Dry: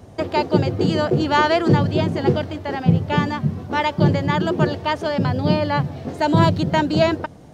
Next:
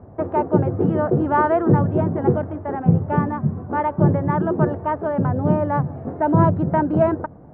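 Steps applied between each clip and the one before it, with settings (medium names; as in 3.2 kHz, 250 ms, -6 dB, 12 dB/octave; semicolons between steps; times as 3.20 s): low-pass 1.4 kHz 24 dB/octave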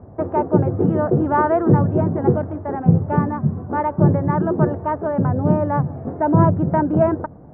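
distance through air 390 m; trim +2 dB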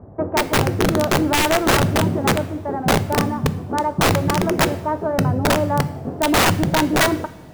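integer overflow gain 10 dB; two-slope reverb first 0.66 s, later 2.7 s, from -18 dB, DRR 12.5 dB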